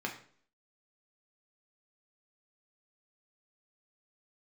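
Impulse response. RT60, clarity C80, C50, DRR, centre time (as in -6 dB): 0.50 s, 13.0 dB, 9.5 dB, 0.0 dB, 19 ms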